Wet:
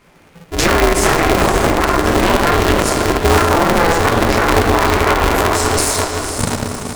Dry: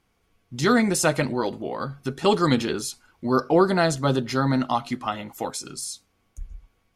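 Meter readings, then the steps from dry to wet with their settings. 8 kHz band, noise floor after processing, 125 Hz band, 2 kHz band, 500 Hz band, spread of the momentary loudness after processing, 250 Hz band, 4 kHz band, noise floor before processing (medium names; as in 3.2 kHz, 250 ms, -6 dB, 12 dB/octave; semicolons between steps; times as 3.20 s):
+12.0 dB, -46 dBFS, +9.5 dB, +14.0 dB, +9.5 dB, 6 LU, +6.5 dB, +12.0 dB, -69 dBFS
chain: chorus voices 4, 0.6 Hz, delay 13 ms, depth 3.7 ms; band-stop 1.1 kHz; simulated room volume 300 m³, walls mixed, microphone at 1.5 m; compression 4:1, threshold -31 dBFS, peak gain reduction 17.5 dB; on a send: echo that smears into a reverb 513 ms, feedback 49%, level -7.5 dB; on the sum: Chebyshev shaper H 4 -10 dB, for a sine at -18 dBFS; ten-band graphic EQ 125 Hz +6 dB, 250 Hz +7 dB, 500 Hz +4 dB, 1 kHz +8 dB, 2 kHz +9 dB, 8 kHz +6 dB; loudness maximiser +13.5 dB; polarity switched at an audio rate 170 Hz; trim -1 dB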